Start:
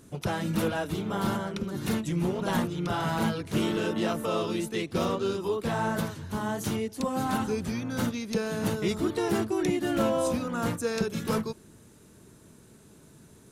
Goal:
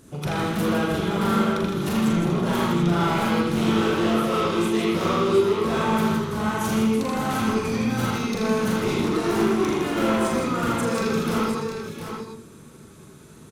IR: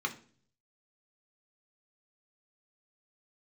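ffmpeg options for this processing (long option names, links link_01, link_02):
-filter_complex "[0:a]volume=27dB,asoftclip=hard,volume=-27dB,aecho=1:1:41|160|708|737:0.631|0.501|0.335|0.376,asplit=2[link_01][link_02];[1:a]atrim=start_sample=2205,highshelf=frequency=9700:gain=-10,adelay=80[link_03];[link_02][link_03]afir=irnorm=-1:irlink=0,volume=-2.5dB[link_04];[link_01][link_04]amix=inputs=2:normalize=0,volume=2dB"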